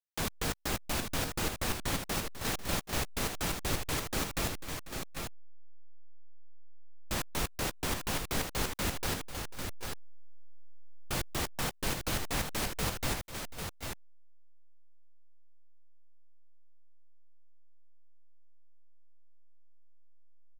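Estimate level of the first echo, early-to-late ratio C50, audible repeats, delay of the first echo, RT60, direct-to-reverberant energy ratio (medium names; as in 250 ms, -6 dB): -15.5 dB, no reverb, 3, 254 ms, no reverb, no reverb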